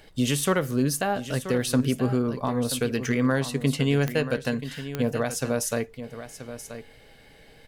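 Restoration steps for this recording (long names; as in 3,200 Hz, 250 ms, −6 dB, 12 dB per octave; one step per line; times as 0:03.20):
clipped peaks rebuilt −13.5 dBFS
click removal
downward expander −43 dBFS, range −21 dB
echo removal 980 ms −12 dB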